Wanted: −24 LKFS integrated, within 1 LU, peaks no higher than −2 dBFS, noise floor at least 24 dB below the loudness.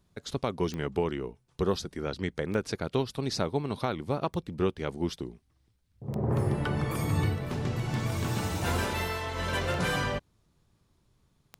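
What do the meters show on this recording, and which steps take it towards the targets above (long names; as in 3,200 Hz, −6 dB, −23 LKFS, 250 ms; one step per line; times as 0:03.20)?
number of clicks 7; integrated loudness −31.5 LKFS; sample peak −15.0 dBFS; target loudness −24.0 LKFS
→ click removal
level +7.5 dB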